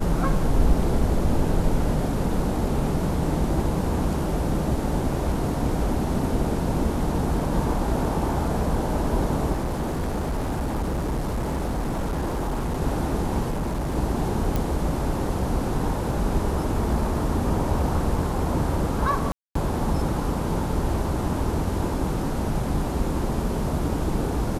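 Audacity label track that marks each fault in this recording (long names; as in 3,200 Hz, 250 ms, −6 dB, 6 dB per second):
9.520000	12.810000	clipping −22.5 dBFS
13.510000	13.960000	clipping −23 dBFS
14.560000	14.560000	click
19.320000	19.550000	drop-out 234 ms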